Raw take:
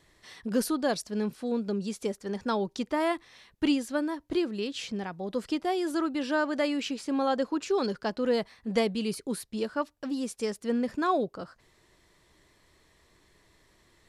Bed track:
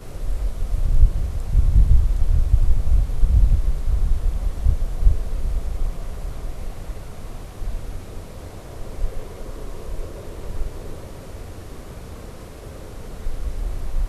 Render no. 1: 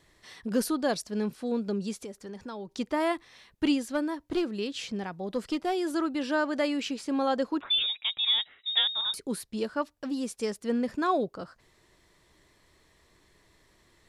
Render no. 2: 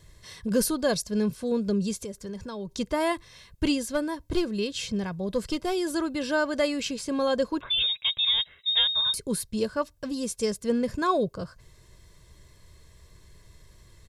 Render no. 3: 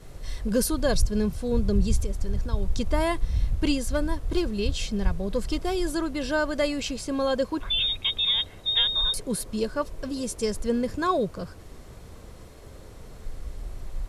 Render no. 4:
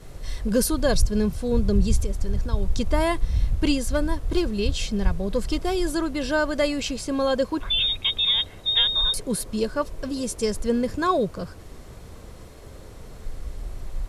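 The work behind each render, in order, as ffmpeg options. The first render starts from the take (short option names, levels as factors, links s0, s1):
-filter_complex "[0:a]asettb=1/sr,asplit=3[s0][s1][s2];[s0]atrim=end=1.974[s3];[s1]atrim=start=1.97:end=2.77,asetpts=PTS-STARTPTS,afade=t=in:d=0.004:c=qsin,afade=t=out:st=0.796:d=0.004:c=qsin,acompressor=threshold=0.0112:ratio=3:attack=3.2:release=140:knee=1:detection=peak[s4];[s2]atrim=start=2.766[s5];[s3][s4]acrossfade=d=0.004:c1=hsin:c2=qsin[s6];[s6][s5]acrossfade=d=0.004:c1=qsin:c2=hsin,asettb=1/sr,asplit=3[s7][s8][s9];[s7]atrim=end=3.874[s10];[s8]atrim=start=3.87:end=5.81,asetpts=PTS-STARTPTS,afade=t=in:d=0.004:c=qsin,afade=t=out:st=1.936:d=0.004:c=qsin,aeval=exprs='clip(val(0),-1,0.0562)':c=same[s11];[s9]atrim=start=5.806[s12];[s10][s11]acrossfade=d=0.004:c1=hsin:c2=qsin[s13];[s13][s12]acrossfade=d=0.004:c1=qsin:c2=hsin,asettb=1/sr,asplit=3[s14][s15][s16];[s14]atrim=end=7.614[s17];[s15]atrim=start=7.61:end=9.14,asetpts=PTS-STARTPTS,afade=t=in:d=0.004:c=qsin,afade=t=out:st=1.526:d=0.004:c=qsin,lowpass=f=3300:t=q:w=0.5098,lowpass=f=3300:t=q:w=0.6013,lowpass=f=3300:t=q:w=0.9,lowpass=f=3300:t=q:w=2.563,afreqshift=-3900[s18];[s16]atrim=start=9.136[s19];[s17][s18]acrossfade=d=0.004:c1=hsin:c2=qsin[s20];[s20][s19]acrossfade=d=0.004:c1=qsin:c2=hsin"
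-af "bass=f=250:g=13,treble=f=4000:g=7,aecho=1:1:1.9:0.5"
-filter_complex "[1:a]volume=0.335[s0];[0:a][s0]amix=inputs=2:normalize=0"
-af "volume=1.33"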